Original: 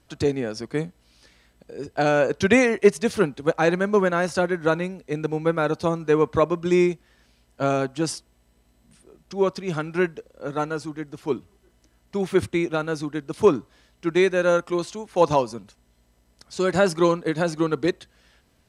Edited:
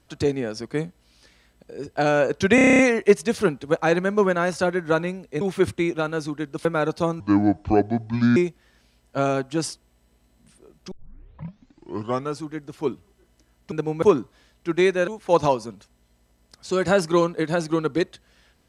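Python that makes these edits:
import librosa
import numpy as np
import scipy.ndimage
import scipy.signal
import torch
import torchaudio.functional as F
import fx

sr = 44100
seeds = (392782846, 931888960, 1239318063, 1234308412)

y = fx.edit(x, sr, fx.stutter(start_s=2.55, slice_s=0.03, count=9),
    fx.swap(start_s=5.17, length_s=0.31, other_s=12.16, other_length_s=1.24),
    fx.speed_span(start_s=6.03, length_s=0.78, speed=0.67),
    fx.tape_start(start_s=9.36, length_s=1.46),
    fx.cut(start_s=14.45, length_s=0.5), tone=tone)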